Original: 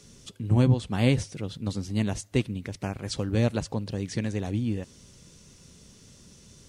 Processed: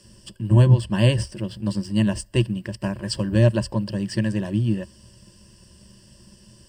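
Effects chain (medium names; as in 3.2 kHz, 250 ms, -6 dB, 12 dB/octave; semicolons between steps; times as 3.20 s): rippled EQ curve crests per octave 1.3, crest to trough 16 dB; in parallel at -5 dB: hysteresis with a dead band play -38.5 dBFS; on the sum: trim -2 dB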